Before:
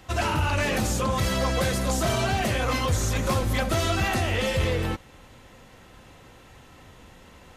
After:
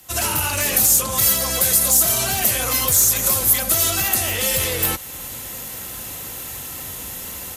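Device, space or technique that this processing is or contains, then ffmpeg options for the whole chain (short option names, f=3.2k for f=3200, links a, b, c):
FM broadcast chain: -filter_complex "[0:a]highpass=42,dynaudnorm=f=130:g=3:m=16dB,acrossover=split=100|450[a][b][c];[a]acompressor=threshold=-27dB:ratio=4[d];[b]acompressor=threshold=-25dB:ratio=4[e];[c]acompressor=threshold=-18dB:ratio=4[f];[d][e][f]amix=inputs=3:normalize=0,aemphasis=mode=production:type=50fm,alimiter=limit=-8.5dB:level=0:latency=1:release=453,asoftclip=type=hard:threshold=-12dB,lowpass=f=15k:w=0.5412,lowpass=f=15k:w=1.3066,aemphasis=mode=production:type=50fm,volume=-5dB"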